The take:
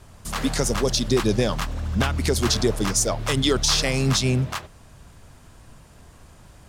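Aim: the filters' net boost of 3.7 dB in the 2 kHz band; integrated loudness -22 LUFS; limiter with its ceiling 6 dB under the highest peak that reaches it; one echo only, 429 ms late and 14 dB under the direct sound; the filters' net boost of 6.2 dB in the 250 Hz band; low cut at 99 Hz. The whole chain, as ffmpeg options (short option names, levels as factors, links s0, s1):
-af "highpass=99,equalizer=f=250:t=o:g=7.5,equalizer=f=2000:t=o:g=4.5,alimiter=limit=0.266:level=0:latency=1,aecho=1:1:429:0.2"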